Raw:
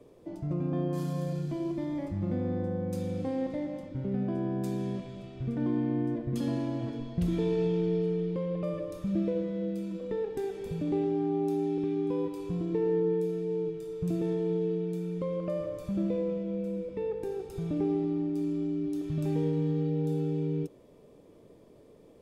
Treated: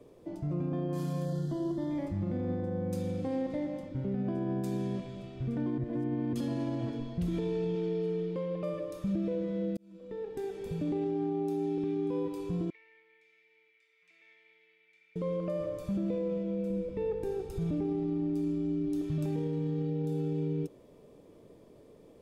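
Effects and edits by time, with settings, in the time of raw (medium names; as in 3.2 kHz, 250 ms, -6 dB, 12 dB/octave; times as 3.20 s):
1.25–1.91 s: Butterworth band-stop 2.4 kHz, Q 2.1
5.78–6.33 s: reverse
7.75–9.04 s: bass shelf 180 Hz -9 dB
9.77–11.15 s: fade in equal-power
12.70–15.16 s: ladder band-pass 2.2 kHz, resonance 90%
16.70–19.05 s: bass shelf 100 Hz +10.5 dB
whole clip: peak limiter -25 dBFS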